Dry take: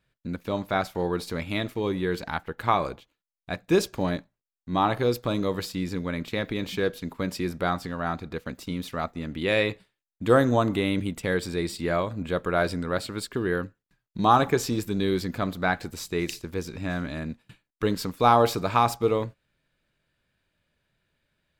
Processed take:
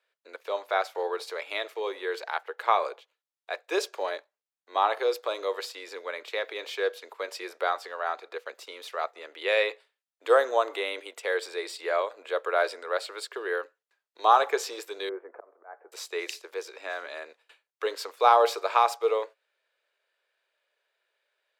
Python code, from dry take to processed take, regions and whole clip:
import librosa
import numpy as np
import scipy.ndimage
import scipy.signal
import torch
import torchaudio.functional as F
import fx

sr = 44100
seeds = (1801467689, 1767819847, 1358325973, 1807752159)

y = fx.chain(x, sr, fx.auto_swell(attack_ms=399.0),
    fx.gaussian_blur(sigma=6.8),
    fx.low_shelf(hz=200.0, db=-6.5), at=(15.09, 15.92))
y = scipy.signal.sosfilt(scipy.signal.butter(8, 420.0, 'highpass', fs=sr, output='sos'), y)
y = fx.high_shelf(y, sr, hz=9800.0, db=-10.5)